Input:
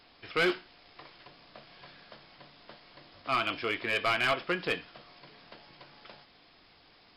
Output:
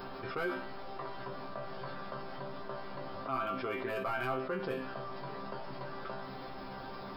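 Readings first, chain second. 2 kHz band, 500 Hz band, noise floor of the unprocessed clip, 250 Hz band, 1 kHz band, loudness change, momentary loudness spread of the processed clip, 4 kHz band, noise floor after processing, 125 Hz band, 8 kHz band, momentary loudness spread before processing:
−9.0 dB, −2.0 dB, −60 dBFS, −2.0 dB, −2.0 dB, −9.5 dB, 9 LU, −13.0 dB, −44 dBFS, +2.0 dB, below −15 dB, 9 LU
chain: flat-topped bell 4,200 Hz −15.5 dB 2.6 octaves
resonators tuned to a chord C3 fifth, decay 0.23 s
envelope flattener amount 70%
level +5 dB

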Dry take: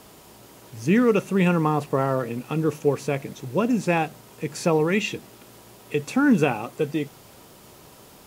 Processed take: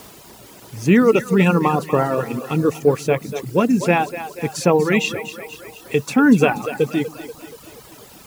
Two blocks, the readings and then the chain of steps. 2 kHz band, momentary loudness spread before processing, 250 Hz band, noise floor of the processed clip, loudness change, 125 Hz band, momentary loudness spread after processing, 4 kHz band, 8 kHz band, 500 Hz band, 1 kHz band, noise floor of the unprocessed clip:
+6.0 dB, 11 LU, +5.0 dB, −44 dBFS, +5.0 dB, +4.0 dB, 18 LU, +6.0 dB, +6.0 dB, +5.5 dB, +5.5 dB, −49 dBFS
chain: echo with a time of its own for lows and highs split 310 Hz, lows 135 ms, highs 240 ms, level −9 dB
bit reduction 8 bits
reverb reduction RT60 0.94 s
level +6 dB

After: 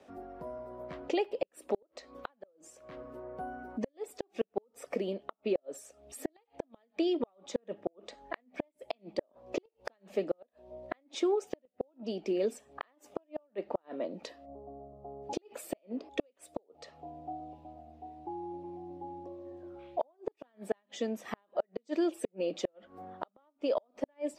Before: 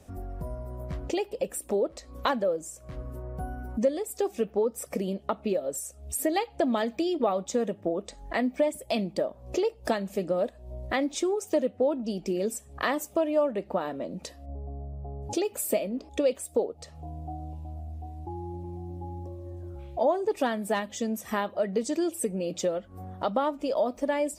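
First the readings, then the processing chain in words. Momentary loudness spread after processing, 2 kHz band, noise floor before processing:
16 LU, −11.0 dB, −52 dBFS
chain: three-way crossover with the lows and the highs turned down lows −24 dB, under 240 Hz, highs −19 dB, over 4,500 Hz
gate with flip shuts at −19 dBFS, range −41 dB

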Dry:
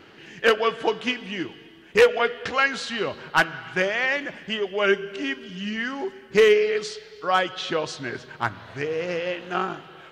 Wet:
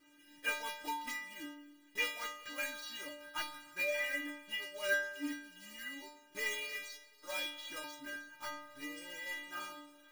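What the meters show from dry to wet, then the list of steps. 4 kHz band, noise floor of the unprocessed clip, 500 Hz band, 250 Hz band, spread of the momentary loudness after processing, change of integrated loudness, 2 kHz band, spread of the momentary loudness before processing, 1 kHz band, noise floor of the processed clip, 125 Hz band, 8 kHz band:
−12.5 dB, −48 dBFS, −23.5 dB, −16.5 dB, 13 LU, −15.5 dB, −13.0 dB, 13 LU, −18.5 dB, −64 dBFS, below −30 dB, −5.0 dB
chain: one scale factor per block 3 bits
dynamic equaliser 2,100 Hz, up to +5 dB, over −35 dBFS, Q 1.8
stiff-string resonator 290 Hz, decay 0.78 s, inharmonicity 0.008
level +2.5 dB

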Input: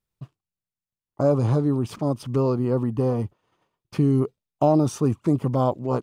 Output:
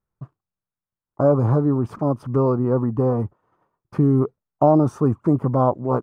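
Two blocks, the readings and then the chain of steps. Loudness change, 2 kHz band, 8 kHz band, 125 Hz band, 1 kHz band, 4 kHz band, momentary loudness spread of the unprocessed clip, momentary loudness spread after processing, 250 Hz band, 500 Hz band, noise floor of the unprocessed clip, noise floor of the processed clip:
+3.0 dB, can't be measured, below −10 dB, +2.5 dB, +4.5 dB, below −10 dB, 7 LU, 7 LU, +2.5 dB, +3.5 dB, below −85 dBFS, below −85 dBFS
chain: high shelf with overshoot 2,000 Hz −13.5 dB, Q 1.5
level +2.5 dB

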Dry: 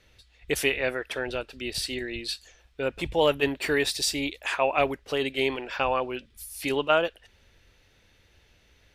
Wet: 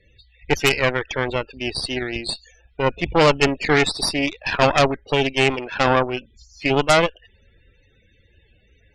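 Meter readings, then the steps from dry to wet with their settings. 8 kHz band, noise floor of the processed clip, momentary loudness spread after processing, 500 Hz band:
+3.5 dB, −58 dBFS, 10 LU, +6.5 dB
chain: downsampling to 16,000 Hz
spectral peaks only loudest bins 32
harmonic generator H 4 −11 dB, 6 −6 dB, 8 −24 dB, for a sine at −9 dBFS
level +6 dB

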